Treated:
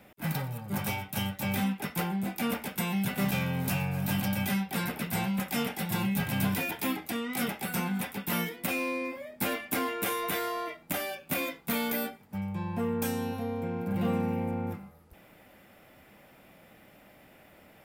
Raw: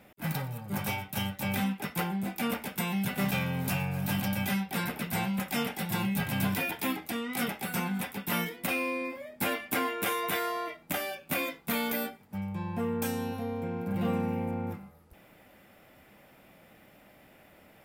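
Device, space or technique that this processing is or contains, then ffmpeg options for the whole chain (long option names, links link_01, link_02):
one-band saturation: -filter_complex "[0:a]acrossover=split=540|4700[link_01][link_02][link_03];[link_02]asoftclip=type=tanh:threshold=-30.5dB[link_04];[link_01][link_04][link_03]amix=inputs=3:normalize=0,volume=1dB"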